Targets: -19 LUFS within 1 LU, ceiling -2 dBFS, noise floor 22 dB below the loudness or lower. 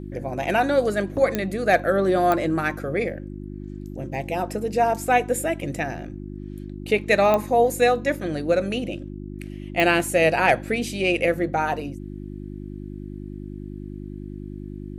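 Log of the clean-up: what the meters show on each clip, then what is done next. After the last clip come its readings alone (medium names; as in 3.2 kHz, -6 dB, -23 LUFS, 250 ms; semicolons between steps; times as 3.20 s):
clicks found 4; hum 50 Hz; highest harmonic 350 Hz; hum level -32 dBFS; loudness -22.5 LUFS; peak level -5.0 dBFS; loudness target -19.0 LUFS
-> de-click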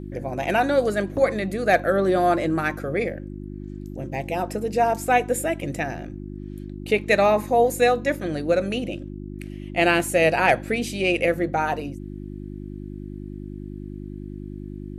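clicks found 0; hum 50 Hz; highest harmonic 350 Hz; hum level -32 dBFS
-> de-hum 50 Hz, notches 7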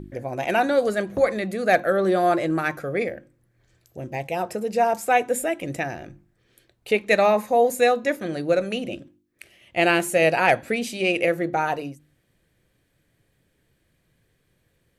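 hum not found; loudness -22.5 LUFS; peak level -6.0 dBFS; loudness target -19.0 LUFS
-> trim +3.5 dB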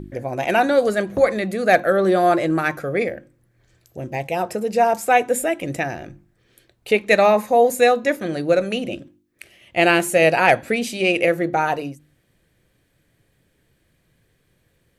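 loudness -19.0 LUFS; peak level -2.5 dBFS; noise floor -65 dBFS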